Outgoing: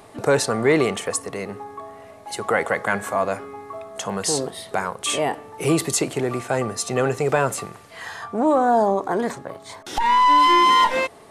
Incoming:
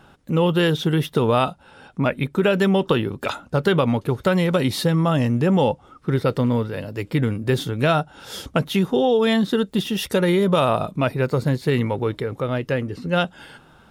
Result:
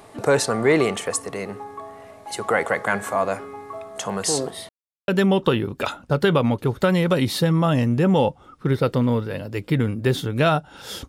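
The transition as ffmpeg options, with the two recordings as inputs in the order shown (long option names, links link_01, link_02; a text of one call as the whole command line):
ffmpeg -i cue0.wav -i cue1.wav -filter_complex "[0:a]apad=whole_dur=11.08,atrim=end=11.08,asplit=2[link_01][link_02];[link_01]atrim=end=4.69,asetpts=PTS-STARTPTS,afade=type=out:start_time=4.686:duration=0.004:curve=hsin[link_03];[link_02]atrim=start=4.69:end=5.08,asetpts=PTS-STARTPTS,volume=0[link_04];[1:a]atrim=start=2.51:end=8.51,asetpts=PTS-STARTPTS,afade=type=in:duration=0.004:curve=hsin[link_05];[link_03][link_04][link_05]concat=n=3:v=0:a=1" out.wav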